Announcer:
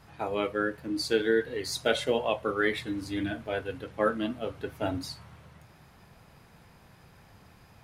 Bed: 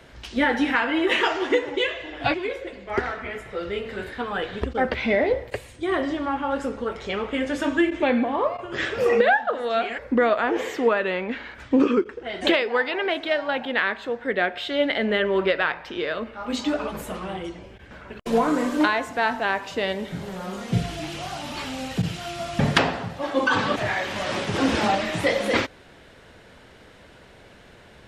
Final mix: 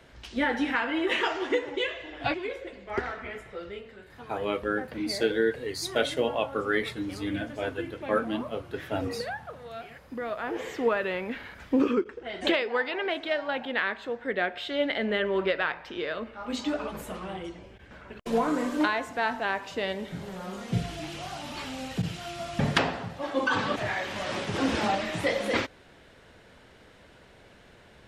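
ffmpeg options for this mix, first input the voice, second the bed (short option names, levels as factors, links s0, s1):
-filter_complex "[0:a]adelay=4100,volume=1[s0];[1:a]volume=2.11,afade=t=out:st=3.32:d=0.67:silence=0.266073,afade=t=in:st=10.15:d=0.72:silence=0.251189[s1];[s0][s1]amix=inputs=2:normalize=0"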